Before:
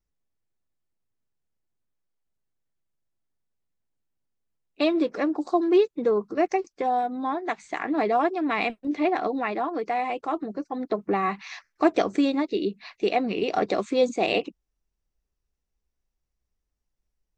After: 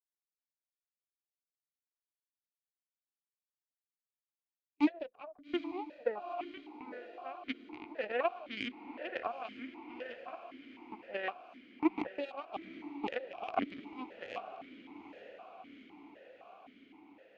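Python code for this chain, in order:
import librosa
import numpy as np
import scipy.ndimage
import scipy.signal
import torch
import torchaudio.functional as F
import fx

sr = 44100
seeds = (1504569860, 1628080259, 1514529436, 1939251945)

p1 = fx.air_absorb(x, sr, metres=100.0)
p2 = fx.tremolo_random(p1, sr, seeds[0], hz=3.5, depth_pct=55)
p3 = fx.cheby_harmonics(p2, sr, harmonics=(3, 4), levels_db=(-9, -19), full_scale_db=-13.0)
p4 = p3 + fx.echo_diffused(p3, sr, ms=852, feedback_pct=68, wet_db=-12, dry=0)
p5 = fx.vowel_held(p4, sr, hz=3.9)
y = p5 * librosa.db_to_amplitude(7.0)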